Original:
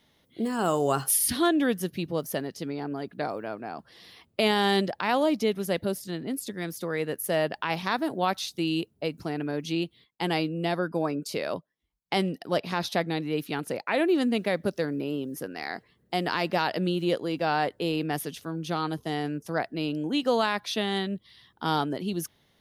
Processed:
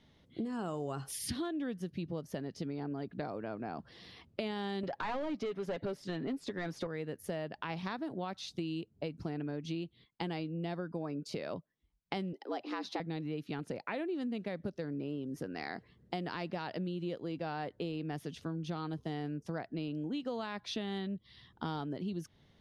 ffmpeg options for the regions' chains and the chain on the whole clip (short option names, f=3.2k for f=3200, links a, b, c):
-filter_complex "[0:a]asettb=1/sr,asplit=3[a][b][c];[a]atrim=end=4.834[d];[b]atrim=start=4.83:end=6.87,asetpts=PTS-STARTPTS,afade=t=in:d=0.004:c=qsin,afade=t=out:st=2.036:d=0.004:c=qsin,aecho=1:1:7.3:0.36,atrim=end_sample=89964,asplit=2[e][f];[f]highpass=f=720:p=1,volume=21dB,asoftclip=type=tanh:threshold=-12.5dB[g];[e][g]amix=inputs=2:normalize=0,lowpass=f=2k:p=1,volume=-6dB[h];[c]atrim=start=6.866[i];[d][h]acrossfade=d=0.004:c1=hsin:c2=qsin[j];[j][i]acrossfade=d=0.004:c1=qsin:c2=hsin,asettb=1/sr,asplit=3[k][l][m];[k]atrim=end=12.334[n];[l]atrim=start=12.33:end=13,asetpts=PTS-STARTPTS,afade=t=in:d=0.004:c=qsin,afade=t=out:st=0.666:d=0.004:c=qsin,highshelf=f=8.2k:g=-7.5,bandreject=f=500:w=12,afreqshift=120[o];[m]atrim=start=12.996[p];[n][o]acrossfade=d=0.004:c1=hsin:c2=qsin[q];[q][p]acrossfade=d=0.004:c1=qsin:c2=hsin,lowpass=6.2k,lowshelf=f=290:g=10,acompressor=threshold=-32dB:ratio=6,volume=-3.5dB"